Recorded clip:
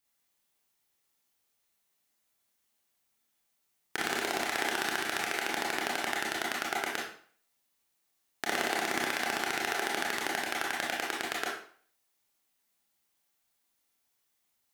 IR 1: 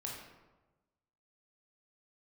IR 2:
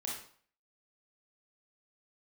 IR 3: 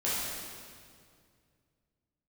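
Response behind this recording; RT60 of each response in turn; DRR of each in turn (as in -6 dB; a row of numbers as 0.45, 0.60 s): 2; 1.2, 0.50, 2.2 s; -2.5, -4.0, -9.5 dB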